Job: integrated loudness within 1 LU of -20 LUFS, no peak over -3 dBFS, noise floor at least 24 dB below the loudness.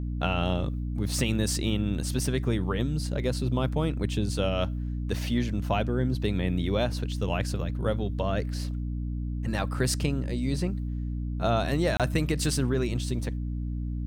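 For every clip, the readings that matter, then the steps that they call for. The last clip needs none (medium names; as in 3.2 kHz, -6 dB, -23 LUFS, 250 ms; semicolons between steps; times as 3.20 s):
dropouts 1; longest dropout 27 ms; hum 60 Hz; highest harmonic 300 Hz; hum level -29 dBFS; loudness -28.5 LUFS; peak level -11.5 dBFS; loudness target -20.0 LUFS
-> interpolate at 11.97 s, 27 ms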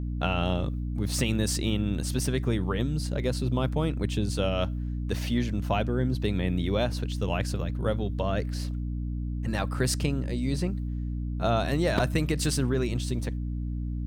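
dropouts 0; hum 60 Hz; highest harmonic 300 Hz; hum level -29 dBFS
-> hum notches 60/120/180/240/300 Hz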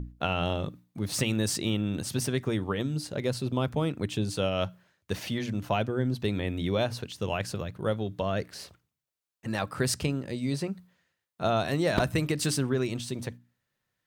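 hum not found; loudness -30.0 LUFS; peak level -9.5 dBFS; loudness target -20.0 LUFS
-> trim +10 dB; peak limiter -3 dBFS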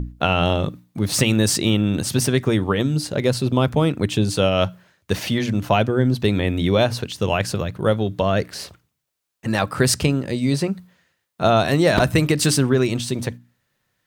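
loudness -20.0 LUFS; peak level -3.0 dBFS; noise floor -74 dBFS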